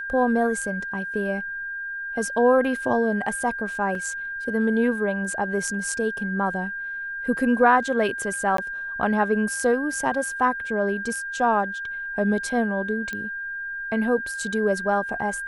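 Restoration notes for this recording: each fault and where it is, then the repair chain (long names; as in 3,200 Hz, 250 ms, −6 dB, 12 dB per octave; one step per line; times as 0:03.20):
whistle 1,600 Hz −29 dBFS
0:03.95: drop-out 2.8 ms
0:08.57–0:08.58: drop-out 13 ms
0:13.13: click −17 dBFS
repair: click removal
notch filter 1,600 Hz, Q 30
repair the gap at 0:03.95, 2.8 ms
repair the gap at 0:08.57, 13 ms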